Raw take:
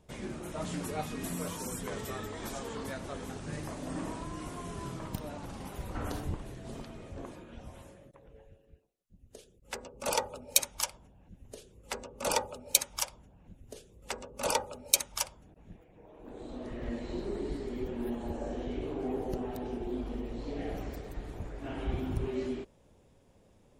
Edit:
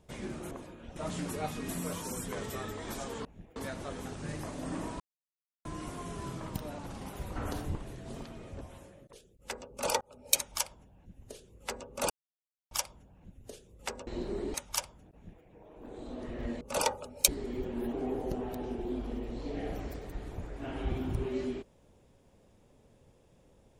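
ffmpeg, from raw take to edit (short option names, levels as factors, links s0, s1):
-filter_complex "[0:a]asplit=16[s0][s1][s2][s3][s4][s5][s6][s7][s8][s9][s10][s11][s12][s13][s14][s15];[s0]atrim=end=0.512[s16];[s1]atrim=start=7.198:end=7.652[s17];[s2]atrim=start=0.508:end=2.802[s18];[s3]atrim=start=15.558:end=15.872[s19];[s4]atrim=start=2.798:end=4.24,asetpts=PTS-STARTPTS,afade=t=out:st=1.438:d=0.004:c=hsin,apad=pad_dur=0.65[s20];[s5]atrim=start=4.24:end=7.202,asetpts=PTS-STARTPTS,afade=t=in:d=0.004:c=hsin[s21];[s6]atrim=start=7.648:end=8.172[s22];[s7]atrim=start=9.358:end=10.24,asetpts=PTS-STARTPTS,afade=t=out:st=0.878:d=0.004:c=hsin[s23];[s8]atrim=start=10.24:end=12.33,asetpts=PTS-STARTPTS,afade=t=in:d=0.37,afade=t=out:st=2.086:d=0.004:c=hsin[s24];[s9]atrim=start=12.33:end=12.94,asetpts=PTS-STARTPTS,volume=0[s25];[s10]atrim=start=12.94:end=14.302,asetpts=PTS-STARTPTS,afade=t=in:d=0.004:c=hsin[s26];[s11]atrim=start=17.038:end=17.512[s27];[s12]atrim=start=14.968:end=17.042[s28];[s13]atrim=start=14.298:end=14.972[s29];[s14]atrim=start=17.508:end=18.162[s30];[s15]atrim=start=18.948[s31];[s16][s17]acrossfade=d=0.004:c1=hsin:c2=hsin[s32];[s32][s18]acrossfade=d=0.004:c1=hsin:c2=hsin[s33];[s33][s19]acrossfade=d=0.004:c1=hsin:c2=hsin[s34];[s20][s21]concat=n=2:v=0:a=1[s35];[s34][s35]acrossfade=d=0.004:c1=hsin:c2=hsin[s36];[s36][s22]acrossfade=d=0.004:c1=hsin:c2=hsin[s37];[s23][s24][s25][s26]concat=n=4:v=0:a=1[s38];[s37][s38]acrossfade=d=0.004:c1=hsin:c2=hsin[s39];[s39][s27]acrossfade=d=0.004:c1=hsin:c2=hsin[s40];[s40][s28]acrossfade=d=0.004:c1=hsin:c2=hsin[s41];[s41][s29]acrossfade=d=0.004:c1=hsin:c2=hsin[s42];[s42][s30]acrossfade=d=0.004:c1=hsin:c2=hsin[s43];[s43][s31]acrossfade=d=0.004:c1=hsin:c2=hsin"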